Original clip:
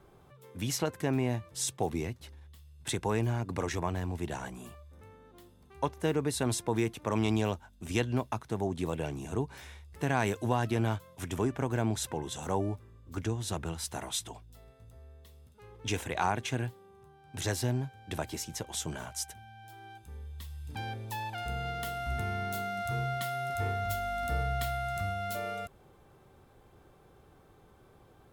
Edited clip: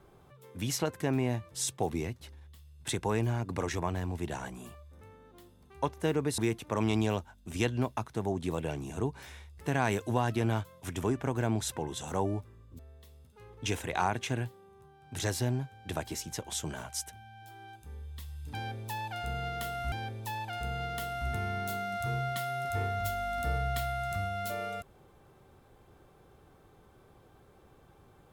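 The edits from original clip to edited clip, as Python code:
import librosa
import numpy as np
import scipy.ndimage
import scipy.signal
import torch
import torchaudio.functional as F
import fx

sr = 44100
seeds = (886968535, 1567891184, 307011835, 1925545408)

y = fx.edit(x, sr, fx.cut(start_s=6.38, length_s=0.35),
    fx.cut(start_s=13.14, length_s=1.87),
    fx.repeat(start_s=20.77, length_s=1.37, count=2), tone=tone)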